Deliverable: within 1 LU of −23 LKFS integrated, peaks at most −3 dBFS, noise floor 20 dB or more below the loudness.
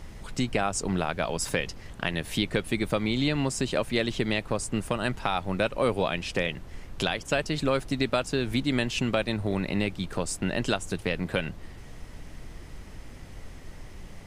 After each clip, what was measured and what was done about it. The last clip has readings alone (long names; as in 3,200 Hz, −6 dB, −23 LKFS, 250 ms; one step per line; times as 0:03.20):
background noise floor −44 dBFS; target noise floor −49 dBFS; integrated loudness −28.5 LKFS; sample peak −9.5 dBFS; target loudness −23.0 LKFS
→ noise reduction from a noise print 6 dB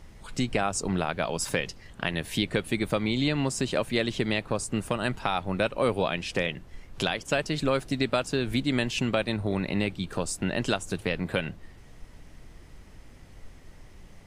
background noise floor −50 dBFS; integrated loudness −28.5 LKFS; sample peak −10.0 dBFS; target loudness −23.0 LKFS
→ level +5.5 dB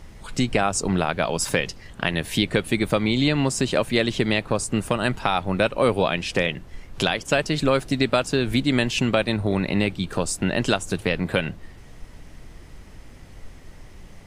integrated loudness −23.0 LKFS; sample peak −4.5 dBFS; background noise floor −44 dBFS